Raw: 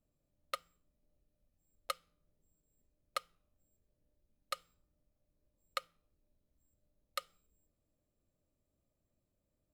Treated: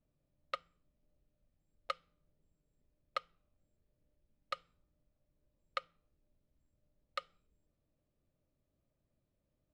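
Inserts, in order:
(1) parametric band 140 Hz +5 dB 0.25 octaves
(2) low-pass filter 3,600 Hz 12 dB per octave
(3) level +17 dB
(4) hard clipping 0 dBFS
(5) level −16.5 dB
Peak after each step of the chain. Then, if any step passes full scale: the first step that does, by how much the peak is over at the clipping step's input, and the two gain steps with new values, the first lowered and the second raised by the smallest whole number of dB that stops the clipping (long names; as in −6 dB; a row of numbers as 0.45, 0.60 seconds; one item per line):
−20.0, −21.5, −4.5, −4.5, −21.0 dBFS
no step passes full scale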